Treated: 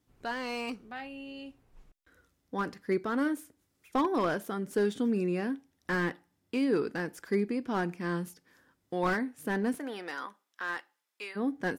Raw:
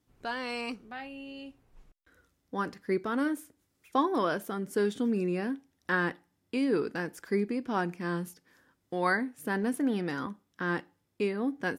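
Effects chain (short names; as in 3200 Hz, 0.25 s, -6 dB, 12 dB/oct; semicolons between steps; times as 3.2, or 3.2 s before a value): 9.78–11.35 HPF 500 Hz -> 1200 Hz 12 dB/oct; slew limiter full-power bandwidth 54 Hz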